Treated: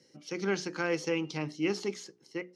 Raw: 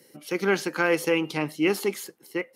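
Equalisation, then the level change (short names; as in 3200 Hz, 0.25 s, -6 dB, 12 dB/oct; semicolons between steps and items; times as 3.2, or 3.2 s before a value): ladder low-pass 6600 Hz, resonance 55%; low shelf 250 Hz +10 dB; notches 60/120/180/240/300/360/420 Hz; 0.0 dB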